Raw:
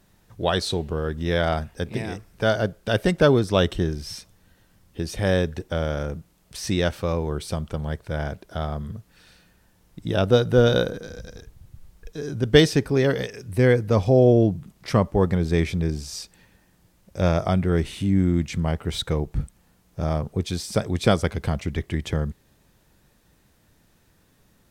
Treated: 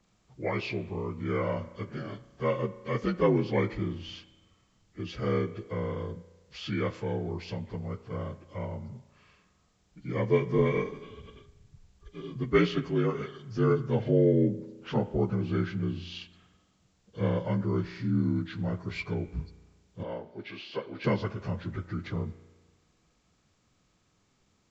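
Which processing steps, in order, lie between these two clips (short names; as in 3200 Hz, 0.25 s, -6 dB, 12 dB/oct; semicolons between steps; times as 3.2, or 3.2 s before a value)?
inharmonic rescaling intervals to 82%; 20.03–21.04 three-band isolator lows -18 dB, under 300 Hz, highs -16 dB, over 4200 Hz; spring tank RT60 1.3 s, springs 34 ms, chirp 35 ms, DRR 15 dB; gain -6.5 dB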